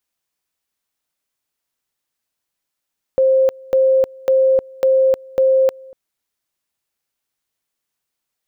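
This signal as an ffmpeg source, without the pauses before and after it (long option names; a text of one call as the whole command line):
ffmpeg -f lavfi -i "aevalsrc='pow(10,(-10-25.5*gte(mod(t,0.55),0.31))/20)*sin(2*PI*528*t)':duration=2.75:sample_rate=44100" out.wav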